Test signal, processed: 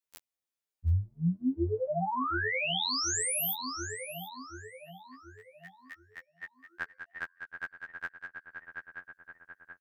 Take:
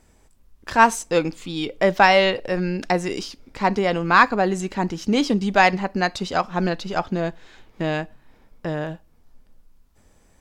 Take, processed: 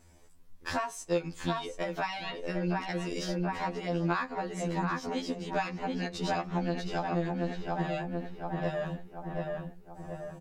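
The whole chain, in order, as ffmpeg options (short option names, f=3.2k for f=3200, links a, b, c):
-filter_complex "[0:a]asplit=2[a][b];[b]adelay=731,lowpass=f=2k:p=1,volume=-6.5dB,asplit=2[c][d];[d]adelay=731,lowpass=f=2k:p=1,volume=0.53,asplit=2[e][f];[f]adelay=731,lowpass=f=2k:p=1,volume=0.53,asplit=2[g][h];[h]adelay=731,lowpass=f=2k:p=1,volume=0.53,asplit=2[i][j];[j]adelay=731,lowpass=f=2k:p=1,volume=0.53,asplit=2[k][l];[l]adelay=731,lowpass=f=2k:p=1,volume=0.53,asplit=2[m][n];[n]adelay=731,lowpass=f=2k:p=1,volume=0.53[o];[a][c][e][g][i][k][m][o]amix=inputs=8:normalize=0,acompressor=threshold=-26dB:ratio=12,afftfilt=real='re*2*eq(mod(b,4),0)':imag='im*2*eq(mod(b,4),0)':win_size=2048:overlap=0.75"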